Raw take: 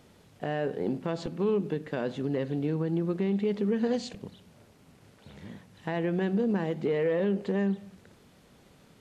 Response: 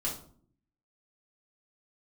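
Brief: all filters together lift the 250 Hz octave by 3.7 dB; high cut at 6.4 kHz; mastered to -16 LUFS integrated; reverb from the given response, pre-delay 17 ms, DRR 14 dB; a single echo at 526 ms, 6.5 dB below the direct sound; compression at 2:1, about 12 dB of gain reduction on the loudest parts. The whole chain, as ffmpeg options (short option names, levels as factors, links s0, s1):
-filter_complex "[0:a]lowpass=6400,equalizer=f=250:t=o:g=5,acompressor=threshold=0.00708:ratio=2,aecho=1:1:526:0.473,asplit=2[s0][s1];[1:a]atrim=start_sample=2205,adelay=17[s2];[s1][s2]afir=irnorm=-1:irlink=0,volume=0.133[s3];[s0][s3]amix=inputs=2:normalize=0,volume=12.6"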